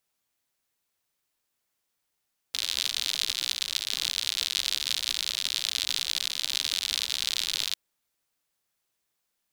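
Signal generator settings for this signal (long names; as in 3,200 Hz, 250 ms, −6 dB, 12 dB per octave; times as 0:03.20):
rain-like ticks over hiss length 5.20 s, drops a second 84, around 3,800 Hz, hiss −28 dB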